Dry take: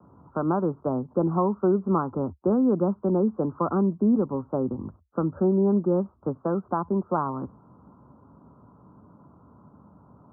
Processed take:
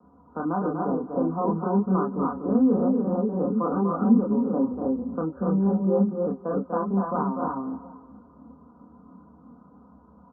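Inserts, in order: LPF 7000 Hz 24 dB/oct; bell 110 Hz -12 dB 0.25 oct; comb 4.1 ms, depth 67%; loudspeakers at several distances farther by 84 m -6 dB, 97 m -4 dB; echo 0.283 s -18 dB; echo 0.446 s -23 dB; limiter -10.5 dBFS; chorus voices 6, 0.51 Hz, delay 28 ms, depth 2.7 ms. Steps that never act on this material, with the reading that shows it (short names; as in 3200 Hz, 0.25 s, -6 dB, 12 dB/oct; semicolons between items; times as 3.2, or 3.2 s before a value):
LPF 7000 Hz: input band ends at 1400 Hz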